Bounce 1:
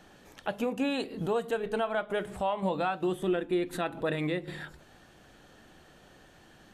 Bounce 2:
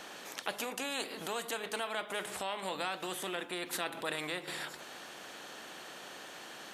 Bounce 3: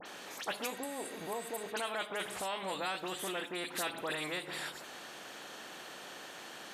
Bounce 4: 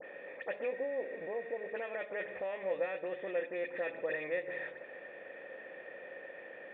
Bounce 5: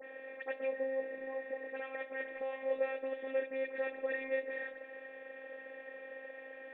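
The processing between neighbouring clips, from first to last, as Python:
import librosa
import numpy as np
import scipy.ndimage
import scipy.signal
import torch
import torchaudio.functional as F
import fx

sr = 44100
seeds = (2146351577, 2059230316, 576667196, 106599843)

y1 = scipy.signal.sosfilt(scipy.signal.butter(2, 430.0, 'highpass', fs=sr, output='sos'), x)
y1 = fx.spectral_comp(y1, sr, ratio=2.0)
y2 = fx.spec_repair(y1, sr, seeds[0], start_s=0.73, length_s=0.91, low_hz=1100.0, high_hz=7500.0, source='after')
y2 = fx.dispersion(y2, sr, late='highs', ms=60.0, hz=2700.0)
y3 = fx.formant_cascade(y2, sr, vowel='e')
y3 = F.gain(torch.from_numpy(y3), 11.5).numpy()
y4 = fx.robotise(y3, sr, hz=265.0)
y4 = F.gain(torch.from_numpy(y4), 1.0).numpy()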